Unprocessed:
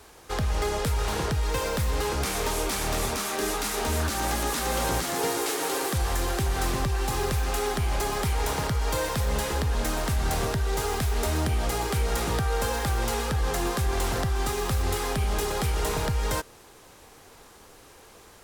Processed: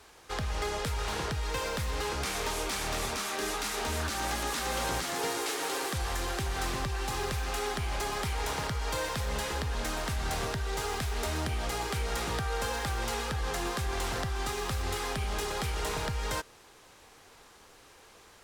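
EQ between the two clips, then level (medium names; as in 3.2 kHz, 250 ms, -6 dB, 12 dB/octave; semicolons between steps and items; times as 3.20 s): tilt shelf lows -3.5 dB; treble shelf 8.6 kHz -10.5 dB; -4.0 dB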